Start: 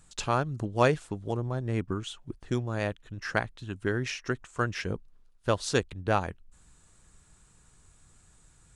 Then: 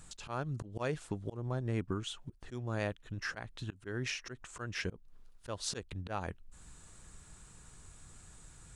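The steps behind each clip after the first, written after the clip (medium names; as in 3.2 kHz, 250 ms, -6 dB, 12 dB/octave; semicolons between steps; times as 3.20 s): slow attack 230 ms; compression 1.5:1, threshold -51 dBFS, peak gain reduction 9.5 dB; trim +4.5 dB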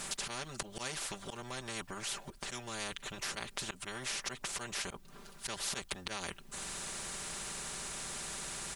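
comb 5.1 ms, depth 92%; in parallel at 0 dB: peak limiter -29 dBFS, peak gain reduction 9 dB; on the sum: spectrum-flattening compressor 4:1; trim +1 dB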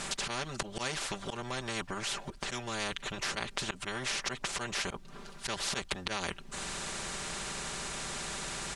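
distance through air 53 m; trim +6 dB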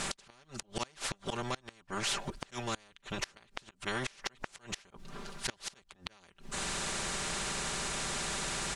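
inverted gate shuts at -23 dBFS, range -28 dB; in parallel at -8 dB: saturation -30 dBFS, distortion -16 dB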